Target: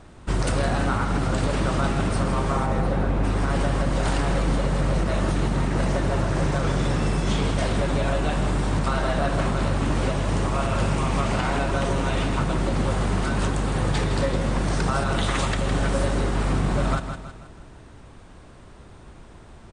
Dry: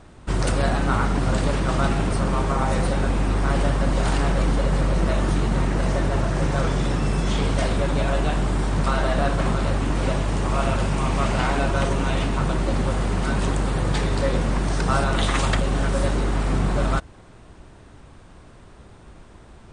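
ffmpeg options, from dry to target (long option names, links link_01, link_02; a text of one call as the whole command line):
ffmpeg -i in.wav -filter_complex "[0:a]asplit=3[link_01][link_02][link_03];[link_01]afade=type=out:start_time=2.65:duration=0.02[link_04];[link_02]lowpass=frequency=1500:poles=1,afade=type=in:start_time=2.65:duration=0.02,afade=type=out:start_time=3.23:duration=0.02[link_05];[link_03]afade=type=in:start_time=3.23:duration=0.02[link_06];[link_04][link_05][link_06]amix=inputs=3:normalize=0,aecho=1:1:160|320|480|640|800:0.316|0.139|0.0612|0.0269|0.0119,alimiter=limit=-13dB:level=0:latency=1:release=122" out.wav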